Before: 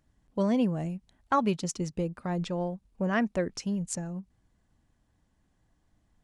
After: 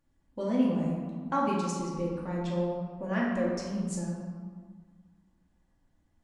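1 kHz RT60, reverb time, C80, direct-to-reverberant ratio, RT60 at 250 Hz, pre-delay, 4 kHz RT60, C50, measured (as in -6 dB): 1.8 s, 1.7 s, 2.5 dB, -5.5 dB, 2.0 s, 3 ms, 0.95 s, 0.5 dB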